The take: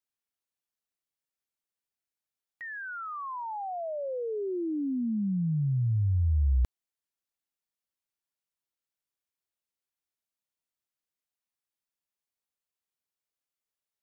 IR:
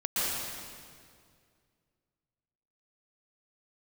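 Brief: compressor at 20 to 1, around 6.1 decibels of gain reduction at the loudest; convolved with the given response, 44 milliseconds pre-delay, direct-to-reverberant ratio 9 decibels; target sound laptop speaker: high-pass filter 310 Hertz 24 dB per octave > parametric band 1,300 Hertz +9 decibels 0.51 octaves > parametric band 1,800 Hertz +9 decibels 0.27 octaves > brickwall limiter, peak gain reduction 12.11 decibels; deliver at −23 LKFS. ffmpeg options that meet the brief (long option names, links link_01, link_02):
-filter_complex "[0:a]acompressor=threshold=-28dB:ratio=20,asplit=2[link_01][link_02];[1:a]atrim=start_sample=2205,adelay=44[link_03];[link_02][link_03]afir=irnorm=-1:irlink=0,volume=-19dB[link_04];[link_01][link_04]amix=inputs=2:normalize=0,highpass=frequency=310:width=0.5412,highpass=frequency=310:width=1.3066,equalizer=frequency=1300:width_type=o:width=0.51:gain=9,equalizer=frequency=1800:width_type=o:width=0.27:gain=9,volume=16.5dB,alimiter=limit=-17dB:level=0:latency=1"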